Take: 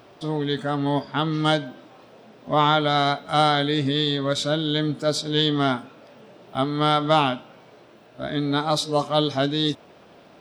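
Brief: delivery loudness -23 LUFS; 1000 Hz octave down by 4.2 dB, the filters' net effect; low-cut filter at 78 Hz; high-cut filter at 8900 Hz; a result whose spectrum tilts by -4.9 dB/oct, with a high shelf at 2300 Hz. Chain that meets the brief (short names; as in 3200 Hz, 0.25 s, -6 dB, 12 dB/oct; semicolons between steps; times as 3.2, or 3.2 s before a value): HPF 78 Hz; LPF 8900 Hz; bell 1000 Hz -4.5 dB; high shelf 2300 Hz -8 dB; gain +2 dB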